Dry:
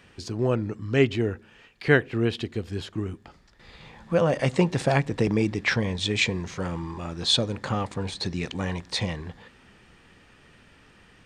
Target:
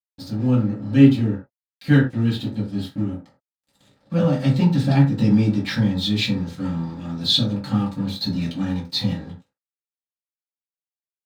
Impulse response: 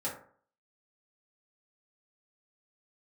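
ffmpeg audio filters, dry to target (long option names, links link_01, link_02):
-filter_complex "[0:a]equalizer=frequency=125:width_type=o:width=1:gain=5,equalizer=frequency=250:width_type=o:width=1:gain=11,equalizer=frequency=500:width_type=o:width=1:gain=-12,equalizer=frequency=2000:width_type=o:width=1:gain=-6,equalizer=frequency=4000:width_type=o:width=1:gain=12,equalizer=frequency=8000:width_type=o:width=1:gain=-6,aeval=exprs='sgn(val(0))*max(abs(val(0))-0.0119,0)':channel_layout=same[link_01];[1:a]atrim=start_sample=2205,afade=type=out:start_time=0.16:duration=0.01,atrim=end_sample=7497[link_02];[link_01][link_02]afir=irnorm=-1:irlink=0,volume=-3dB"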